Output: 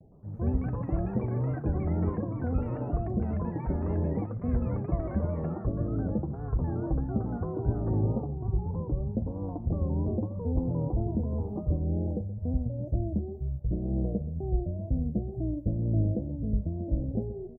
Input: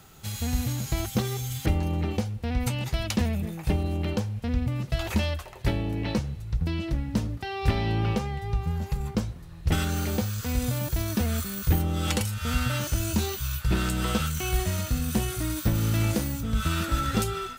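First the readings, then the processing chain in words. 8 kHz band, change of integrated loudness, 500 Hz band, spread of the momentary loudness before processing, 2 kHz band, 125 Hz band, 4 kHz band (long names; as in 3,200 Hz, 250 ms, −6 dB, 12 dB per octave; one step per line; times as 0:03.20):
below −40 dB, −3.0 dB, −1.0 dB, 4 LU, below −20 dB, −2.0 dB, below −40 dB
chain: elliptic low-pass filter 650 Hz, stop band 50 dB
pitch vibrato 2.1 Hz 88 cents
single-tap delay 125 ms −14.5 dB
amplitude tremolo 2 Hz, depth 44%
delay with pitch and tempo change per echo 113 ms, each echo +7 semitones, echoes 3, each echo −6 dB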